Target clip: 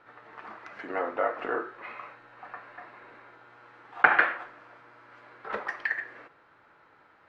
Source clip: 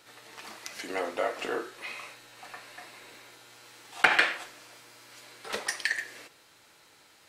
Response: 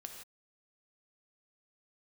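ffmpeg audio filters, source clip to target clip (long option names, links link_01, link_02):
-af "lowpass=frequency=1400:width_type=q:width=1.8"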